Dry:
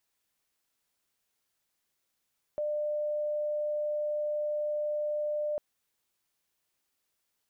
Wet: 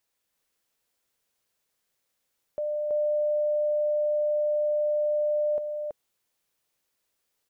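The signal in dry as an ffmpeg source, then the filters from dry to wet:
-f lavfi -i "aevalsrc='0.0376*sin(2*PI*598*t)':d=3:s=44100"
-af "equalizer=f=510:t=o:w=0.43:g=5,aecho=1:1:328:0.708"

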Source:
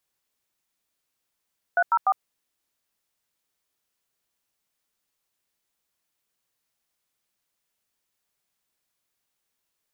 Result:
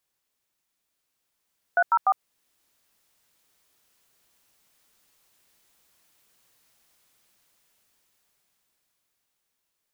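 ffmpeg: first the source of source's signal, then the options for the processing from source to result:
-f lavfi -i "aevalsrc='0.106*clip(min(mod(t,0.148),0.056-mod(t,0.148))/0.002,0,1)*(eq(floor(t/0.148),0)*(sin(2*PI*697*mod(t,0.148))+sin(2*PI*1477*mod(t,0.148)))+eq(floor(t/0.148),1)*(sin(2*PI*941*mod(t,0.148))+sin(2*PI*1336*mod(t,0.148)))+eq(floor(t/0.148),2)*(sin(2*PI*770*mod(t,0.148))+sin(2*PI*1209*mod(t,0.148))))':d=0.444:s=44100"
-af "dynaudnorm=f=220:g=21:m=5.01,alimiter=limit=0.224:level=0:latency=1:release=387"

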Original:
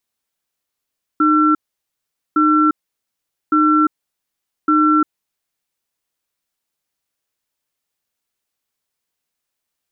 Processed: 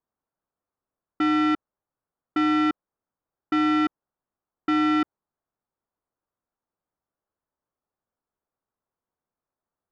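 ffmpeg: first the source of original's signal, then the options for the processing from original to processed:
-f lavfi -i "aevalsrc='0.224*(sin(2*PI*306*t)+sin(2*PI*1350*t))*clip(min(mod(t,1.16),0.35-mod(t,1.16))/0.005,0,1)':d=4.3:s=44100"
-af "lowpass=f=1300:w=0.5412,lowpass=f=1300:w=1.3066,asoftclip=type=tanh:threshold=0.119"

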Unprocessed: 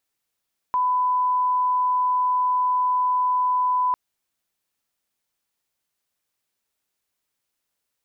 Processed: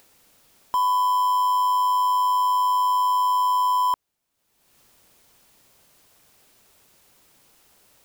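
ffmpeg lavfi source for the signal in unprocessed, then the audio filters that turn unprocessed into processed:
-f lavfi -i "sine=f=1000:d=3.2:r=44100,volume=0.06dB"
-filter_complex "[0:a]asplit=2[s0][s1];[s1]acrusher=samples=21:mix=1:aa=0.000001,volume=0.316[s2];[s0][s2]amix=inputs=2:normalize=0,acompressor=mode=upward:threshold=0.01:ratio=2.5,aeval=exprs='0.168*(cos(1*acos(clip(val(0)/0.168,-1,1)))-cos(1*PI/2))+0.000944*(cos(6*acos(clip(val(0)/0.168,-1,1)))-cos(6*PI/2))':c=same"

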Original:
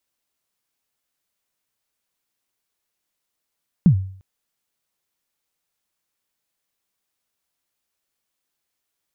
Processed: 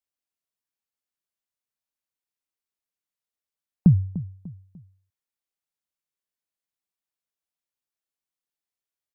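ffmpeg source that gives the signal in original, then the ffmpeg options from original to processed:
-f lavfi -i "aevalsrc='0.501*pow(10,-3*t/0.53)*sin(2*PI*(200*0.09/log(95/200)*(exp(log(95/200)*min(t,0.09)/0.09)-1)+95*max(t-0.09,0)))':d=0.35:s=44100"
-af "afftdn=nr=14:nf=-43,aecho=1:1:297|594|891:0.168|0.0638|0.0242"

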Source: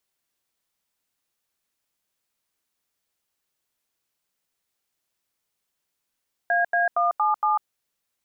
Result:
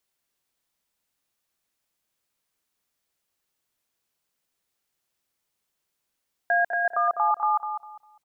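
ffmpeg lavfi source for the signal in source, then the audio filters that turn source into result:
-f lavfi -i "aevalsrc='0.0891*clip(min(mod(t,0.232),0.147-mod(t,0.232))/0.002,0,1)*(eq(floor(t/0.232),0)*(sin(2*PI*697*mod(t,0.232))+sin(2*PI*1633*mod(t,0.232)))+eq(floor(t/0.232),1)*(sin(2*PI*697*mod(t,0.232))+sin(2*PI*1633*mod(t,0.232)))+eq(floor(t/0.232),2)*(sin(2*PI*697*mod(t,0.232))+sin(2*PI*1209*mod(t,0.232)))+eq(floor(t/0.232),3)*(sin(2*PI*852*mod(t,0.232))+sin(2*PI*1209*mod(t,0.232)))+eq(floor(t/0.232),4)*(sin(2*PI*852*mod(t,0.232))+sin(2*PI*1209*mod(t,0.232))))':d=1.16:s=44100"
-filter_complex "[0:a]asplit=2[s0][s1];[s1]adelay=201,lowpass=f=1000:p=1,volume=0.531,asplit=2[s2][s3];[s3]adelay=201,lowpass=f=1000:p=1,volume=0.33,asplit=2[s4][s5];[s5]adelay=201,lowpass=f=1000:p=1,volume=0.33,asplit=2[s6][s7];[s7]adelay=201,lowpass=f=1000:p=1,volume=0.33[s8];[s0][s2][s4][s6][s8]amix=inputs=5:normalize=0"

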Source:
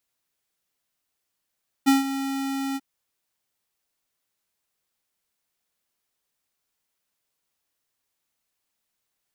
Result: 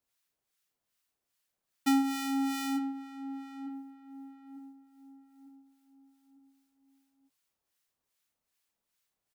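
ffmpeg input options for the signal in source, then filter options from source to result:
-f lavfi -i "aevalsrc='0.168*(2*lt(mod(272*t,1),0.5)-1)':d=0.939:s=44100,afade=t=in:d=0.022,afade=t=out:st=0.022:d=0.15:silence=0.237,afade=t=out:st=0.9:d=0.039"
-filter_complex "[0:a]acompressor=threshold=0.0794:ratio=2.5,acrossover=split=1100[s0][s1];[s0]aeval=exprs='val(0)*(1-0.7/2+0.7/2*cos(2*PI*2.5*n/s))':c=same[s2];[s1]aeval=exprs='val(0)*(1-0.7/2-0.7/2*cos(2*PI*2.5*n/s))':c=same[s3];[s2][s3]amix=inputs=2:normalize=0,asplit=2[s4][s5];[s5]adelay=900,lowpass=f=1000:p=1,volume=0.355,asplit=2[s6][s7];[s7]adelay=900,lowpass=f=1000:p=1,volume=0.45,asplit=2[s8][s9];[s9]adelay=900,lowpass=f=1000:p=1,volume=0.45,asplit=2[s10][s11];[s11]adelay=900,lowpass=f=1000:p=1,volume=0.45,asplit=2[s12][s13];[s13]adelay=900,lowpass=f=1000:p=1,volume=0.45[s14];[s4][s6][s8][s10][s12][s14]amix=inputs=6:normalize=0"

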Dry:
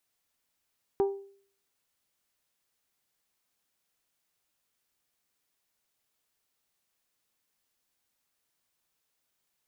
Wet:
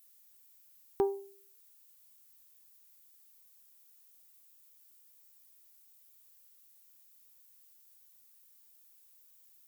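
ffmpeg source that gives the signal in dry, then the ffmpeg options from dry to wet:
-f lavfi -i "aevalsrc='0.1*pow(10,-3*t/0.53)*sin(2*PI*395*t)+0.0335*pow(10,-3*t/0.326)*sin(2*PI*790*t)+0.0112*pow(10,-3*t/0.287)*sin(2*PI*948*t)+0.00376*pow(10,-3*t/0.246)*sin(2*PI*1185*t)+0.00126*pow(10,-3*t/0.201)*sin(2*PI*1580*t)':d=0.89:s=44100"
-af "aemphasis=mode=production:type=75fm"

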